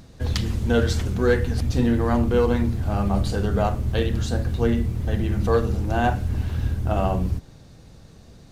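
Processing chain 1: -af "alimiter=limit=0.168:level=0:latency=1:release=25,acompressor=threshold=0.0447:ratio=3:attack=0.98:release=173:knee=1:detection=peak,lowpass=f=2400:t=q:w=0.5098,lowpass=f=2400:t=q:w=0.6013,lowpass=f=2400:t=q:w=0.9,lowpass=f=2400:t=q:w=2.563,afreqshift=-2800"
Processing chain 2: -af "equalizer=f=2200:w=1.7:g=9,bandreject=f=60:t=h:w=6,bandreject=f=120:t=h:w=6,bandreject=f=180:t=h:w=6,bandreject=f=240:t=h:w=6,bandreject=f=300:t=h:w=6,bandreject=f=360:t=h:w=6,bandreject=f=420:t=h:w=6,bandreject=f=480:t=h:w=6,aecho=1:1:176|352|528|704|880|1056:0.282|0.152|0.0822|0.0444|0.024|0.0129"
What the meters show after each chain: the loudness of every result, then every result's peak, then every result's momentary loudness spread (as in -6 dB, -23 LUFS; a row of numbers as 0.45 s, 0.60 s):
-27.0 LUFS, -23.5 LUFS; -17.0 dBFS, -7.0 dBFS; 7 LU, 5 LU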